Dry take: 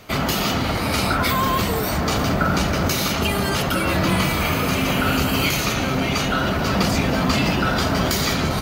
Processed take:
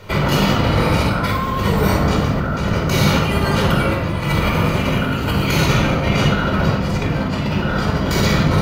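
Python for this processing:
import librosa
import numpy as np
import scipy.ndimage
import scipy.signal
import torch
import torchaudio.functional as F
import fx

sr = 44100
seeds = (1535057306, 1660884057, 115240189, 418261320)

y = fx.high_shelf(x, sr, hz=4300.0, db=-9.5)
y = fx.over_compress(y, sr, threshold_db=-23.0, ratio=-0.5)
y = fx.room_shoebox(y, sr, seeds[0], volume_m3=2300.0, walls='furnished', distance_m=4.7)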